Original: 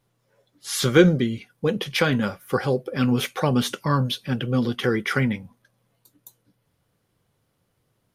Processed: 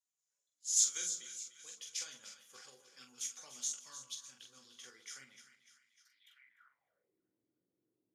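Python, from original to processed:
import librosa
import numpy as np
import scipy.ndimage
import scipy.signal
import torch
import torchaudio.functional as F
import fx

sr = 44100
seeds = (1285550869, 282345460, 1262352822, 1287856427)

p1 = fx.tilt_shelf(x, sr, db=-4.0, hz=740.0, at=(0.77, 1.85))
p2 = p1 + fx.echo_split(p1, sr, split_hz=1200.0, low_ms=123, high_ms=299, feedback_pct=52, wet_db=-10, dry=0)
p3 = fx.filter_sweep_bandpass(p2, sr, from_hz=6900.0, to_hz=320.0, start_s=5.97, end_s=7.19, q=6.1)
p4 = fx.room_early_taps(p3, sr, ms=(16, 45), db=(-8.0, -5.5))
p5 = fx.level_steps(p4, sr, step_db=11)
p6 = p4 + (p5 * 10.0 ** (-2.0 / 20.0))
p7 = fx.dynamic_eq(p6, sr, hz=6800.0, q=1.1, threshold_db=-50.0, ratio=4.0, max_db=7)
y = p7 * 10.0 ** (-7.0 / 20.0)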